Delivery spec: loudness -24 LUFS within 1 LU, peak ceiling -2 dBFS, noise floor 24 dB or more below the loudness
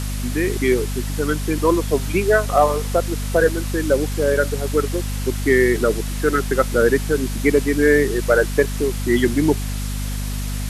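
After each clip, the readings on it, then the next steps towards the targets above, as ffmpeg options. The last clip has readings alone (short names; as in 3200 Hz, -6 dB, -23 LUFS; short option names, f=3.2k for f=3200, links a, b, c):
hum 50 Hz; harmonics up to 250 Hz; hum level -22 dBFS; noise floor -25 dBFS; noise floor target -44 dBFS; loudness -19.5 LUFS; peak -2.5 dBFS; loudness target -24.0 LUFS
-> -af "bandreject=f=50:t=h:w=6,bandreject=f=100:t=h:w=6,bandreject=f=150:t=h:w=6,bandreject=f=200:t=h:w=6,bandreject=f=250:t=h:w=6"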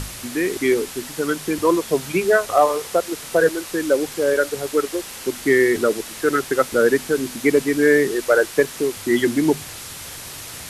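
hum none; noise floor -35 dBFS; noise floor target -44 dBFS
-> -af "afftdn=nr=9:nf=-35"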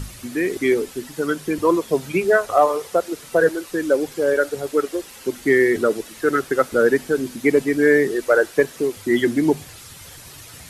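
noise floor -42 dBFS; noise floor target -44 dBFS
-> -af "afftdn=nr=6:nf=-42"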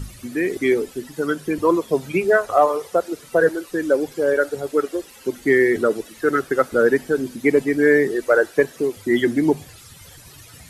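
noise floor -45 dBFS; loudness -20.0 LUFS; peak -3.0 dBFS; loudness target -24.0 LUFS
-> -af "volume=-4dB"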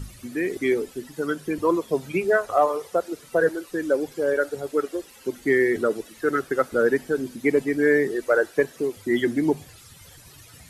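loudness -24.0 LUFS; peak -7.0 dBFS; noise floor -49 dBFS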